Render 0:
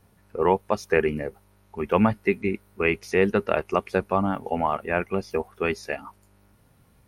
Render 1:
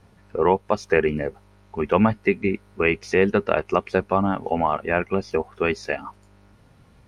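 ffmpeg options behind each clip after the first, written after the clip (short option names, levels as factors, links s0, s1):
-filter_complex "[0:a]lowpass=6500,asplit=2[s0][s1];[s1]acompressor=threshold=0.0398:ratio=6,volume=0.944[s2];[s0][s2]amix=inputs=2:normalize=0"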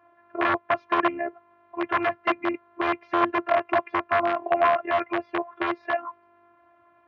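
-af "afftfilt=real='hypot(re,im)*cos(PI*b)':imag='0':win_size=512:overlap=0.75,aeval=exprs='(mod(5.96*val(0)+1,2)-1)/5.96':c=same,highpass=f=110:w=0.5412,highpass=f=110:w=1.3066,equalizer=f=160:t=q:w=4:g=-8,equalizer=f=240:t=q:w=4:g=-8,equalizer=f=440:t=q:w=4:g=-5,equalizer=f=660:t=q:w=4:g=9,equalizer=f=1100:t=q:w=4:g=9,equalizer=f=1600:t=q:w=4:g=3,lowpass=f=2500:w=0.5412,lowpass=f=2500:w=1.3066"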